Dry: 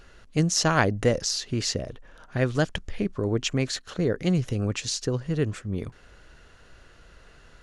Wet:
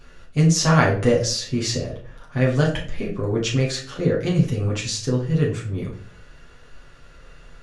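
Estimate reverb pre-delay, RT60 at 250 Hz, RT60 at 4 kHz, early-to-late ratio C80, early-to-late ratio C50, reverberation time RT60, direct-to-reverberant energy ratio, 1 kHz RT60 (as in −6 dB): 7 ms, 0.70 s, 0.35 s, 12.5 dB, 7.5 dB, 0.50 s, −5.0 dB, 0.40 s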